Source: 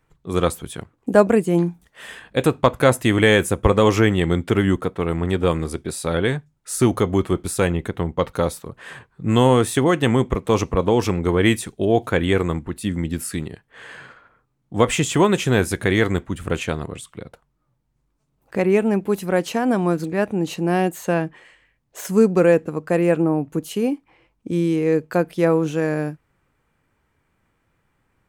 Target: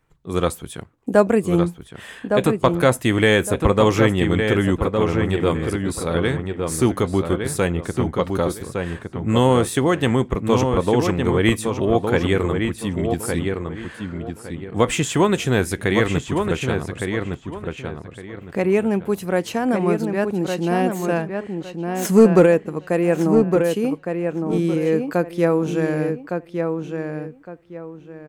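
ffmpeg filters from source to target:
-filter_complex "[0:a]asplit=3[a][b][c];[a]afade=t=out:st=22.01:d=0.02[d];[b]acontrast=68,afade=t=in:st=22.01:d=0.02,afade=t=out:st=22.45:d=0.02[e];[c]afade=t=in:st=22.45:d=0.02[f];[d][e][f]amix=inputs=3:normalize=0,asplit=2[g][h];[h]adelay=1161,lowpass=f=3.1k:p=1,volume=-5dB,asplit=2[i][j];[j]adelay=1161,lowpass=f=3.1k:p=1,volume=0.27,asplit=2[k][l];[l]adelay=1161,lowpass=f=3.1k:p=1,volume=0.27,asplit=2[m][n];[n]adelay=1161,lowpass=f=3.1k:p=1,volume=0.27[o];[i][k][m][o]amix=inputs=4:normalize=0[p];[g][p]amix=inputs=2:normalize=0,volume=-1dB"

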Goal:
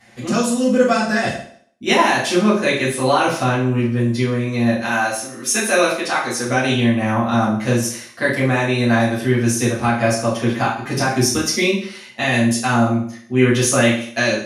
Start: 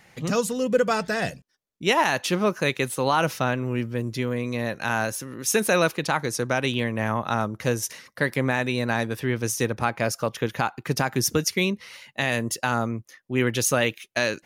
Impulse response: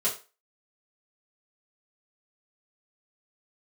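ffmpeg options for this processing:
-filter_complex "[0:a]asettb=1/sr,asplit=3[a][b][c];[a]atrim=end=4.854[d];[b]atrim=start=4.85:end=6.47,asetpts=PTS-STARTPTS,afade=t=in:d=0.004:c=qsin,afade=t=out:st=1.616:d=0.004:c=qsin,highpass=f=390:p=1[e];[c]atrim=start=6.466[f];[d][e]acrossfade=d=0.004:c1=hsin:c2=qsin[g];[g][f]acrossfade=d=0.004:c1=qsin:c2=hsin[h];[1:a]atrim=start_sample=2205,asetrate=23814,aresample=44100[i];[h][i]afir=irnorm=-1:irlink=0,volume=-6.5dB"

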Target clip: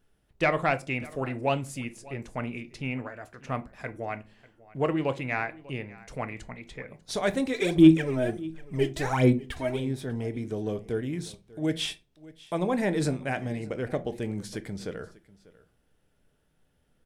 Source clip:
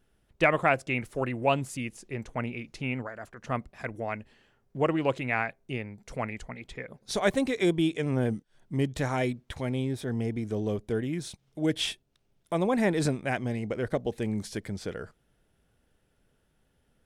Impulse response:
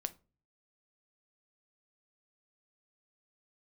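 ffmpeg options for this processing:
-filter_complex "[0:a]asoftclip=type=tanh:threshold=-11dB,asplit=3[a][b][c];[a]afade=t=out:st=7.53:d=0.02[d];[b]aphaser=in_gain=1:out_gain=1:delay=3.2:decay=0.77:speed=1.4:type=sinusoidal,afade=t=in:st=7.53:d=0.02,afade=t=out:st=9.79:d=0.02[e];[c]afade=t=in:st=9.79:d=0.02[f];[d][e][f]amix=inputs=3:normalize=0,aecho=1:1:594:0.0891[g];[1:a]atrim=start_sample=2205,afade=t=out:st=0.31:d=0.01,atrim=end_sample=14112[h];[g][h]afir=irnorm=-1:irlink=0"

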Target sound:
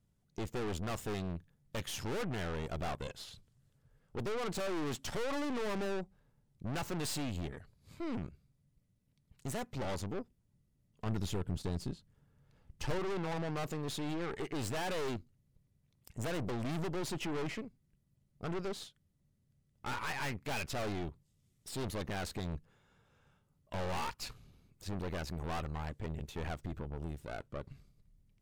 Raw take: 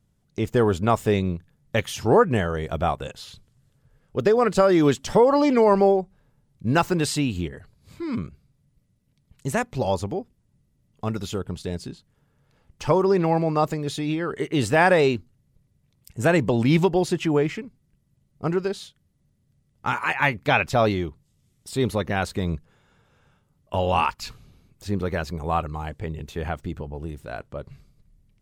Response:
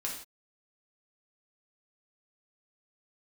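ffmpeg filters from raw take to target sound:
-filter_complex "[0:a]aeval=exprs='(tanh(39.8*val(0)+0.75)-tanh(0.75))/39.8':c=same,asettb=1/sr,asplit=3[a][b][c];[a]atrim=end=11.064[d];[b]atrim=start=11.06:end=12.99,asetpts=PTS-STARTPTS,afade=t=in:d=0.004:c=qsin,afade=t=out:st=1.926:d=0.004:c=qsin,lowshelf=f=220:g=7[e];[c]atrim=start=12.986[f];[d][e]acrossfade=d=0.004:c1=hsin:c2=qsin[g];[g][f]acrossfade=d=0.004:c1=qsin:c2=hsin,volume=-3.5dB"

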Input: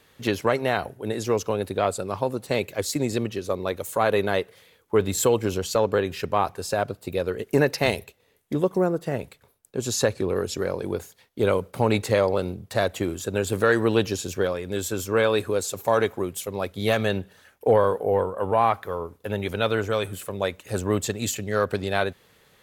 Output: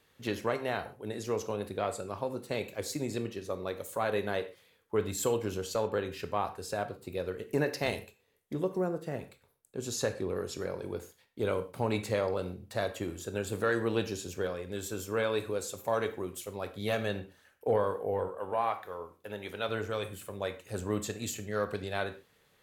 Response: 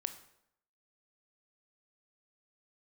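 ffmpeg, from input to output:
-filter_complex "[0:a]asettb=1/sr,asplit=3[a][b][c];[a]atrim=end=18.284[d];[b]atrim=start=18.28:end=19.69,asetpts=PTS-STARTPTS,afade=t=in:d=0.004:c=qsin,afade=t=out:st=1.406:d=0.004:c=qsin,lowshelf=f=220:g=-11[e];[c]atrim=start=19.686[f];[d][e]acrossfade=d=0.004:c1=hsin:c2=qsin[g];[g][f]acrossfade=d=0.004:c1=qsin:c2=hsin[h];[1:a]atrim=start_sample=2205,afade=t=out:st=0.25:d=0.01,atrim=end_sample=11466,asetrate=61740,aresample=44100[i];[h][i]afir=irnorm=-1:irlink=0,volume=-5.5dB"

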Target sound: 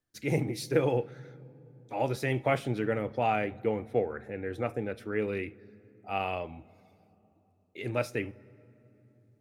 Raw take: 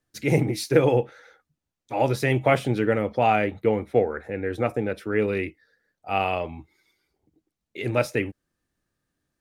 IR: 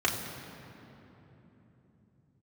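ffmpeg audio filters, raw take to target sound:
-filter_complex "[0:a]asplit=2[a][b];[1:a]atrim=start_sample=2205,adelay=38[c];[b][c]afir=irnorm=-1:irlink=0,volume=-30dB[d];[a][d]amix=inputs=2:normalize=0,volume=-7.5dB"

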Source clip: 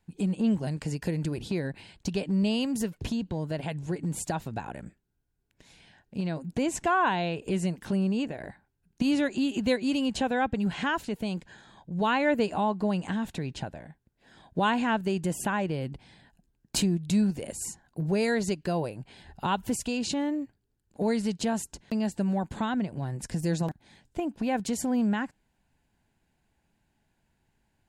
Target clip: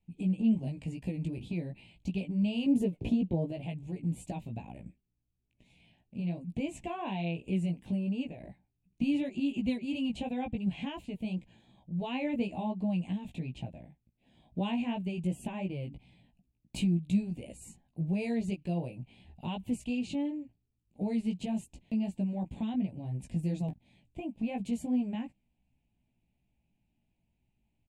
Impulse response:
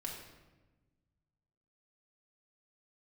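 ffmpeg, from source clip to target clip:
-filter_complex "[0:a]asettb=1/sr,asplit=3[a][b][c];[a]atrim=end=2.664[d];[b]atrim=start=2.66:end=3.51,asetpts=PTS-STARTPTS,afade=t=in:d=0.004:c=qsin,afade=t=out:st=0.846:d=0.004:c=qsin,equalizer=f=440:t=o:w=2.1:g=12[e];[c]atrim=start=3.506[f];[d][e]acrossfade=d=0.004:c1=hsin:c2=qsin[g];[g][f]acrossfade=d=0.004:c1=qsin:c2=hsin,flanger=delay=15.5:depth=2.3:speed=2.8,firequalizer=gain_entry='entry(240,0);entry(420,-9);entry(620,-5);entry(890,-10);entry(1400,-27);entry(2400,-1);entry(5200,-18);entry(8300,-11);entry(13000,-15)':delay=0.05:min_phase=1"

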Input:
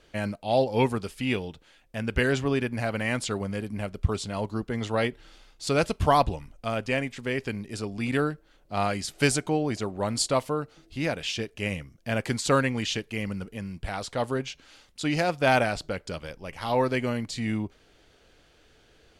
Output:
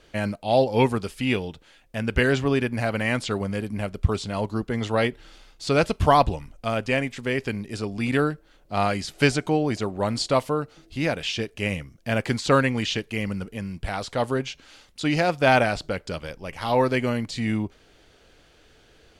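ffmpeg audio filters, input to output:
-filter_complex "[0:a]acrossover=split=5500[a][b];[b]acompressor=threshold=-45dB:ratio=4:attack=1:release=60[c];[a][c]amix=inputs=2:normalize=0,volume=3.5dB"

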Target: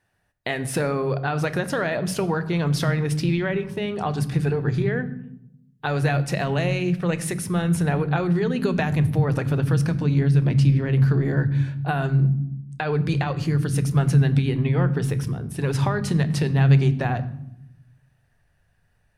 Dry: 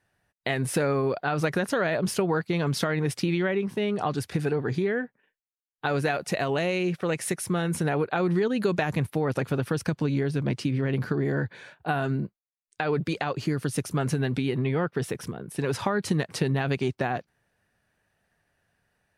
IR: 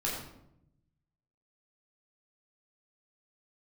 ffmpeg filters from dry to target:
-filter_complex "[0:a]asplit=2[a][b];[b]asubboost=boost=10.5:cutoff=140[c];[1:a]atrim=start_sample=2205[d];[c][d]afir=irnorm=-1:irlink=0,volume=-14.5dB[e];[a][e]amix=inputs=2:normalize=0"

